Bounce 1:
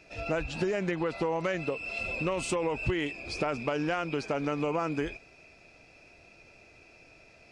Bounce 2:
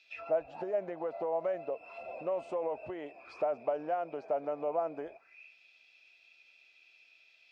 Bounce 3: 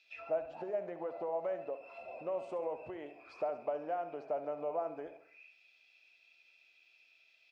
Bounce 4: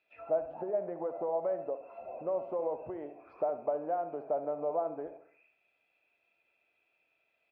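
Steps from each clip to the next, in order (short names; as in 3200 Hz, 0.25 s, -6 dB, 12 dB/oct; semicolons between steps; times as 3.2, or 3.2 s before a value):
auto-wah 650–3800 Hz, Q 4.4, down, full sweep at -30.5 dBFS; gain +4.5 dB
feedback echo 69 ms, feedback 45%, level -11.5 dB; gain -4 dB
LPF 1100 Hz 12 dB/oct; gain +4.5 dB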